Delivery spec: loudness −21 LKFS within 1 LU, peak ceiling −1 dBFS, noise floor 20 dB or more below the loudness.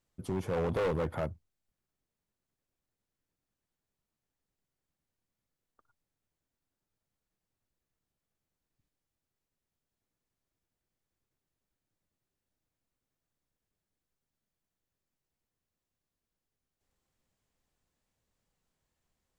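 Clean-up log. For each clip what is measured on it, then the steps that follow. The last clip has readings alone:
share of clipped samples 0.6%; peaks flattened at −27.0 dBFS; integrated loudness −33.5 LKFS; sample peak −27.0 dBFS; target loudness −21.0 LKFS
→ clipped peaks rebuilt −27 dBFS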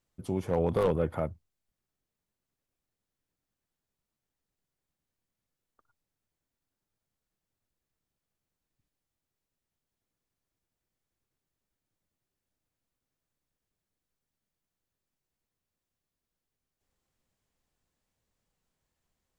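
share of clipped samples 0.0%; integrated loudness −30.0 LKFS; sample peak −18.0 dBFS; target loudness −21.0 LKFS
→ level +9 dB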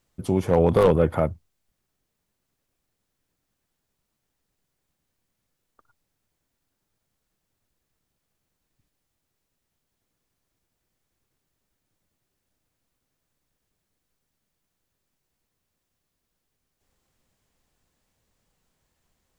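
integrated loudness −21.0 LKFS; sample peak −9.0 dBFS; background noise floor −80 dBFS

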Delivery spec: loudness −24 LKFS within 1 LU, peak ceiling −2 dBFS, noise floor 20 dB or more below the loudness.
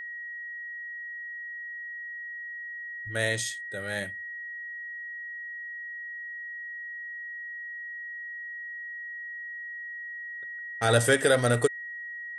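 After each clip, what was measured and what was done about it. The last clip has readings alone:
interfering tone 1,900 Hz; level of the tone −36 dBFS; integrated loudness −31.5 LKFS; sample peak −8.0 dBFS; target loudness −24.0 LKFS
→ notch filter 1,900 Hz, Q 30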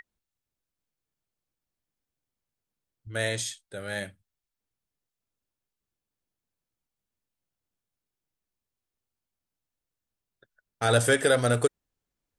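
interfering tone none found; integrated loudness −26.5 LKFS; sample peak −8.5 dBFS; target loudness −24.0 LKFS
→ level +2.5 dB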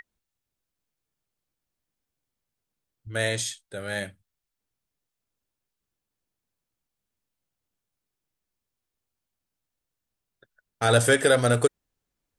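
integrated loudness −24.0 LKFS; sample peak −6.0 dBFS; background noise floor −86 dBFS

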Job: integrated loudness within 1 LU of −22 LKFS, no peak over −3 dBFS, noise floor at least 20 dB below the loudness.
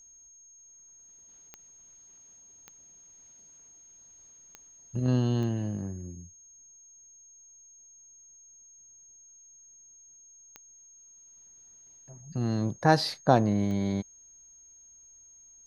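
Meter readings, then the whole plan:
number of clicks 6; interfering tone 6,500 Hz; level of the tone −52 dBFS; integrated loudness −28.0 LKFS; sample peak −5.5 dBFS; target loudness −22.0 LKFS
→ click removal
notch filter 6,500 Hz, Q 30
level +6 dB
brickwall limiter −3 dBFS

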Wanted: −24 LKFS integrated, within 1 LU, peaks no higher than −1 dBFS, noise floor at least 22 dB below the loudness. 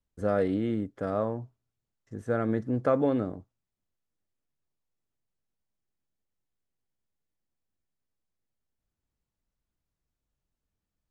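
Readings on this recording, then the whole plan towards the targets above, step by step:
integrated loudness −29.0 LKFS; sample peak −12.0 dBFS; target loudness −24.0 LKFS
→ level +5 dB

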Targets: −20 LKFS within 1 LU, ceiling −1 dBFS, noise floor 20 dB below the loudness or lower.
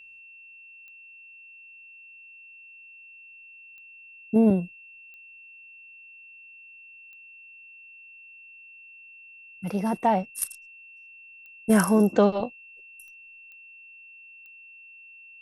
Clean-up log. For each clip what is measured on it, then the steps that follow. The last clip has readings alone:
number of clicks 8; interfering tone 2,700 Hz; level of the tone −46 dBFS; integrated loudness −24.0 LKFS; sample peak −6.0 dBFS; target loudness −20.0 LKFS
→ click removal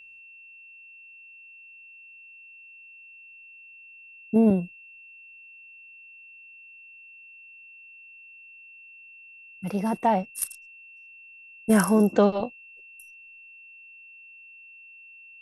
number of clicks 0; interfering tone 2,700 Hz; level of the tone −46 dBFS
→ notch filter 2,700 Hz, Q 30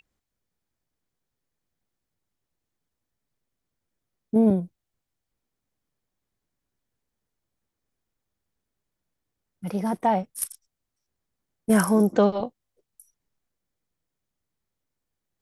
interfering tone none found; integrated loudness −23.5 LKFS; sample peak −6.0 dBFS; target loudness −20.0 LKFS
→ level +3.5 dB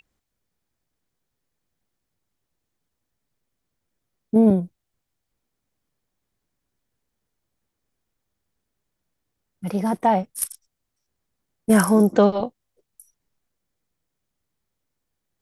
integrated loudness −20.0 LKFS; sample peak −2.5 dBFS; background noise floor −80 dBFS

